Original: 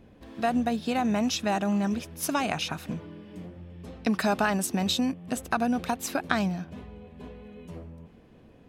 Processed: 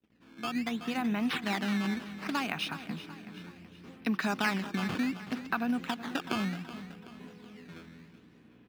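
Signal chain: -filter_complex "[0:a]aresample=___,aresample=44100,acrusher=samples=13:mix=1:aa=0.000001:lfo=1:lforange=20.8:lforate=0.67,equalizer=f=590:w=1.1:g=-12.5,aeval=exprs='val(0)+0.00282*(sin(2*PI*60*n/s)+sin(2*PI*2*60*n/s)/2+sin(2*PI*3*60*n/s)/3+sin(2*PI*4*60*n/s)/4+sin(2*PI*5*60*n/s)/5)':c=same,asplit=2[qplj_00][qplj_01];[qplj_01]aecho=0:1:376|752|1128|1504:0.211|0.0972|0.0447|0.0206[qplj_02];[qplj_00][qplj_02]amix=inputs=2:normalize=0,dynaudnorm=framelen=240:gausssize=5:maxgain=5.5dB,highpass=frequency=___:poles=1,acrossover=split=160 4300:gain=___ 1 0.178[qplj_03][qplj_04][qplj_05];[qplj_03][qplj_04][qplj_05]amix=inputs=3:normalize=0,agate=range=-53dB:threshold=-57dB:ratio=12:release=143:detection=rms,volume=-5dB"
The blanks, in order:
16000, 110, 0.141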